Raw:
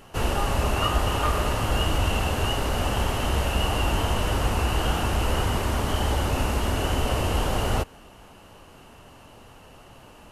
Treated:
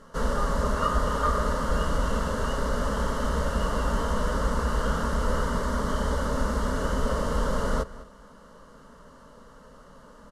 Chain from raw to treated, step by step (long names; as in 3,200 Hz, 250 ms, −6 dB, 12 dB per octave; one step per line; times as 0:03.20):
high-frequency loss of the air 63 metres
phaser with its sweep stopped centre 510 Hz, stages 8
slap from a distant wall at 35 metres, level −17 dB
level +2 dB